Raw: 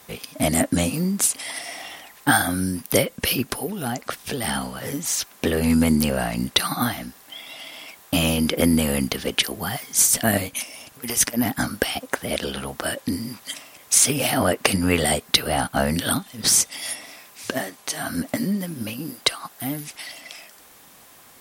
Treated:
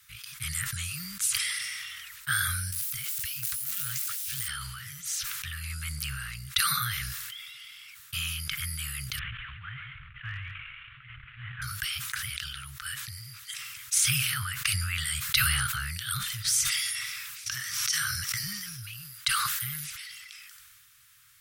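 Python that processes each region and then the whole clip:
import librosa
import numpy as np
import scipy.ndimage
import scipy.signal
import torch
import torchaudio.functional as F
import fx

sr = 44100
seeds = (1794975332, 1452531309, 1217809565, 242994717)

y = fx.chain(x, sr, fx.crossing_spikes(level_db=-16.5),
    fx.over_compress(threshold_db=-25.0, ratio=-1.0), at=(2.72, 4.48))
y = fx.chain(y, sr, fx.cvsd(bps=16000),
    fx.clip_hard(threshold_db=-12.0),
    fx.echo_single(ms=139, db=-14.0), at=(9.19, 11.62))
y = fx.chain(y, sr, fx.peak_eq(hz=5600.0, db=14.0, octaves=0.25),
    fx.pre_swell(db_per_s=24.0), at=(17.46, 18.82))
y = scipy.signal.sosfilt(scipy.signal.cheby1(4, 1.0, [130.0, 1300.0], 'bandstop', fs=sr, output='sos'), y)
y = fx.sustainer(y, sr, db_per_s=23.0)
y = F.gain(torch.from_numpy(y), -8.0).numpy()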